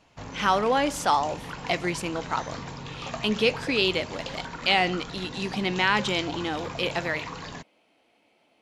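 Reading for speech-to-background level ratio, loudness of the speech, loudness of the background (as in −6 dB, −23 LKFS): 11.0 dB, −26.5 LKFS, −37.5 LKFS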